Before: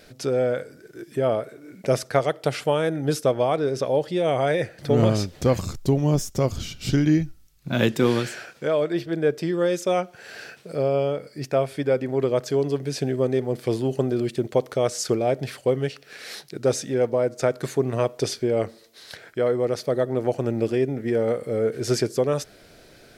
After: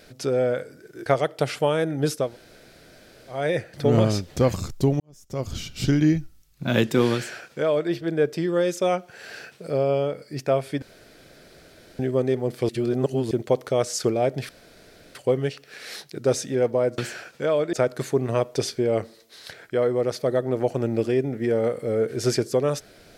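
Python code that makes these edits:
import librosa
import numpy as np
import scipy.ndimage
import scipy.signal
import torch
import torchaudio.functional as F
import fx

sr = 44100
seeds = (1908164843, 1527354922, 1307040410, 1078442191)

y = fx.edit(x, sr, fx.cut(start_s=1.06, length_s=1.05),
    fx.room_tone_fill(start_s=3.3, length_s=1.14, crossfade_s=0.24),
    fx.fade_in_span(start_s=6.05, length_s=0.57, curve='qua'),
    fx.duplicate(start_s=8.2, length_s=0.75, to_s=17.37),
    fx.room_tone_fill(start_s=11.87, length_s=1.17),
    fx.reverse_span(start_s=13.74, length_s=0.62),
    fx.insert_room_tone(at_s=15.54, length_s=0.66), tone=tone)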